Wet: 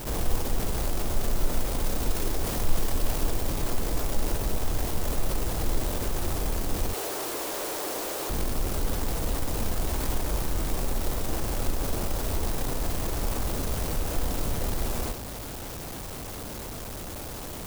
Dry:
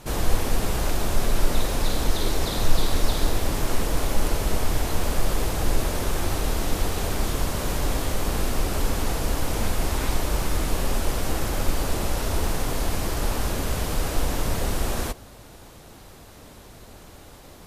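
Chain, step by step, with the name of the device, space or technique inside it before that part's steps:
0:06.93–0:08.30: Butterworth high-pass 310 Hz 48 dB per octave
early CD player with a faulty converter (converter with a step at zero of −26.5 dBFS; converter with an unsteady clock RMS 0.12 ms)
level −5.5 dB

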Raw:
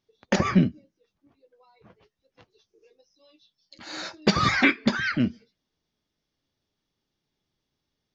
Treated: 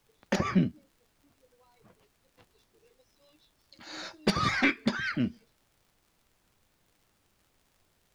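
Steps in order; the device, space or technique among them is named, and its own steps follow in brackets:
record under a worn stylus (stylus tracing distortion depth 0.021 ms; surface crackle; pink noise bed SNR 36 dB)
level −5.5 dB

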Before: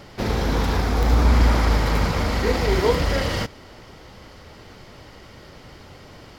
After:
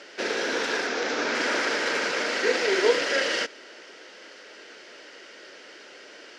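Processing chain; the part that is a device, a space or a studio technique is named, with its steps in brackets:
phone speaker on a table (loudspeaker in its box 340–8,500 Hz, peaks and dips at 800 Hz −8 dB, 1,100 Hz −8 dB, 1,600 Hz +8 dB, 2,700 Hz +5 dB, 5,900 Hz +4 dB)
0:00.87–0:01.35: Butterworth low-pass 7,100 Hz 36 dB per octave

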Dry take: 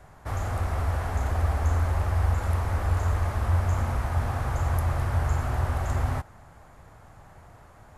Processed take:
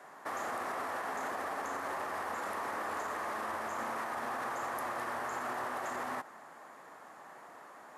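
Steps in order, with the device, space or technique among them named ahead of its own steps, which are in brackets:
laptop speaker (high-pass filter 250 Hz 24 dB per octave; parametric band 1,100 Hz +5 dB 0.51 octaves; parametric band 1,800 Hz +6 dB 0.22 octaves; brickwall limiter −29 dBFS, peak gain reduction 8 dB)

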